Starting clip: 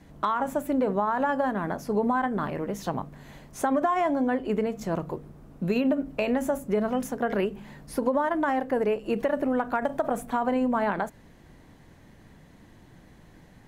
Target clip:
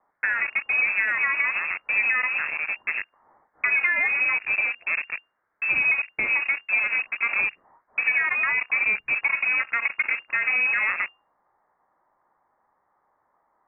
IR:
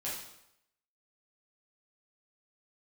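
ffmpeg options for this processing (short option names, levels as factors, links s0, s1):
-filter_complex "[0:a]aemphasis=mode=reproduction:type=cd,acrossover=split=1600[s0][s1];[s0]acrusher=bits=4:mix=0:aa=0.5[s2];[s2][s1]amix=inputs=2:normalize=0,lowpass=f=2400:t=q:w=0.5098,lowpass=f=2400:t=q:w=0.6013,lowpass=f=2400:t=q:w=0.9,lowpass=f=2400:t=q:w=2.563,afreqshift=-2800,volume=1.19"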